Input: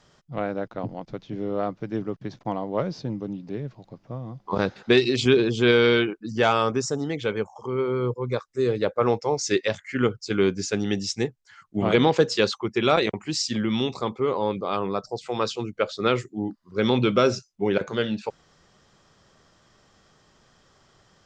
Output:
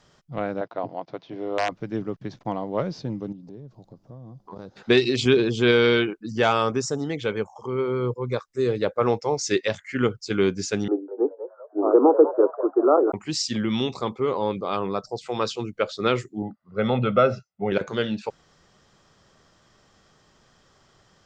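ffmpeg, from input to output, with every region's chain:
-filter_complex "[0:a]asettb=1/sr,asplit=3[a][b][c];[a]atrim=end=0.614[d];[b]atrim=start=0.61:end=1.72,asetpts=PTS-STARTPTS,afade=t=in:d=0.004:c=qsin,afade=t=out:st=1.106:d=0.004:c=qsin,aeval=exprs='(mod(6.31*val(0)+1,2)-1)/6.31':c=same,highpass=190,equalizer=f=210:t=q:w=4:g=-10,equalizer=f=680:t=q:w=4:g=7,equalizer=f=990:t=q:w=4:g=5,lowpass=f=5.4k:w=0.5412,lowpass=f=5.4k:w=1.3066[e];[c]atrim=start=1.716[f];[d][e]acrossfade=d=0.004:c1=hsin:c2=qsin[g];[g][f]acrossfade=d=0.004:c1=qsin:c2=hsin,asettb=1/sr,asplit=3[h][i][j];[h]atrim=end=3.324[k];[i]atrim=start=3.32:end=4.77,asetpts=PTS-STARTPTS,afade=t=in:d=0.004:c=qsin,afade=t=out:st=1.446:d=0.004:c=qsin,equalizer=f=2.2k:w=0.93:g=-14.5,acompressor=threshold=-41dB:ratio=2.5:attack=3.2:release=140:knee=1:detection=peak[l];[j]atrim=start=4.766[m];[k][l]acrossfade=d=0.004:c1=hsin:c2=qsin[n];[n][m]acrossfade=d=0.004:c1=qsin:c2=hsin,asettb=1/sr,asplit=3[o][p][q];[o]atrim=end=10.884[r];[p]atrim=start=10.88:end=13.12,asetpts=PTS-STARTPTS,afade=t=in:d=0.004:c=qsin,afade=t=out:st=2.236:d=0.004:c=qsin,asuperpass=centerf=610:order=20:qfactor=0.58,lowshelf=f=440:g=9,asplit=5[s][t][u][v][w];[t]adelay=197,afreqshift=80,volume=-12.5dB[x];[u]adelay=394,afreqshift=160,volume=-21.1dB[y];[v]adelay=591,afreqshift=240,volume=-29.8dB[z];[w]adelay=788,afreqshift=320,volume=-38.4dB[aa];[s][x][y][z][aa]amix=inputs=5:normalize=0,atrim=end_sample=98784[ab];[q]atrim=start=13.116[ac];[r][ab]acrossfade=d=0.004:c1=hsin:c2=qsin[ad];[ad][ac]acrossfade=d=0.004:c1=qsin:c2=hsin,asettb=1/sr,asplit=3[ae][af][ag];[ae]atrim=end=16.424[ah];[af]atrim=start=16.42:end=17.72,asetpts=PTS-STARTPTS,afade=t=in:d=0.004:c=qsin,afade=t=out:st=1.296:d=0.004:c=qsin,highpass=110,lowpass=2k,aecho=1:1:1.5:0.7,atrim=end_sample=57330[ai];[ag]atrim=start=17.716[aj];[ah][ai]acrossfade=d=0.004:c1=hsin:c2=qsin[ak];[ak][aj]acrossfade=d=0.004:c1=qsin:c2=hsin"

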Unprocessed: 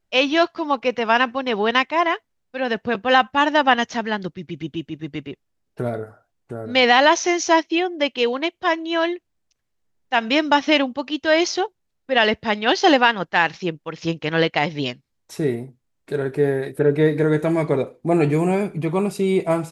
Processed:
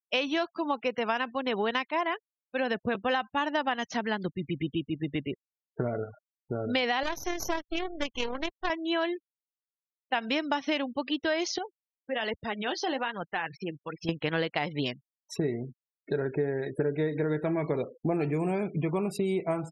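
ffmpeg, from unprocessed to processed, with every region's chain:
-filter_complex "[0:a]asettb=1/sr,asplit=3[a][b][c];[a]atrim=end=7.034[d];[b]atrim=start=7.03:end=8.7,asetpts=PTS-STARTPTS,afade=t=in:d=0.004:c=qsin,afade=t=out:st=1.666:d=0.004:c=qsin,highpass=210,aeval=exprs='max(val(0),0)':c=same,tremolo=f=40:d=0.4[e];[c]atrim=start=8.696[f];[d][e]acrossfade=d=0.004:c1=hsin:c2=qsin[g];[g][f]acrossfade=d=0.004:c1=qsin:c2=hsin,asettb=1/sr,asplit=3[h][i][j];[h]atrim=end=11.584[k];[i]atrim=start=11.58:end=14.09,asetpts=PTS-STARTPTS,afade=t=in:d=0.004:c=qsin,afade=t=out:st=2.506:d=0.004:c=qsin,acompressor=threshold=-28dB:ratio=2:attack=3.2:release=140:knee=1:detection=peak,flanger=delay=1.2:depth=8.4:regen=57:speed=1.2:shape=sinusoidal[l];[j]atrim=start=14.086[m];[k][l]acrossfade=d=0.004:c1=hsin:c2=qsin[n];[n][m]acrossfade=d=0.004:c1=qsin:c2=hsin,afftfilt=real='re*gte(hypot(re,im),0.0141)':imag='im*gte(hypot(re,im),0.0141)':win_size=1024:overlap=0.75,acompressor=threshold=-26dB:ratio=6"

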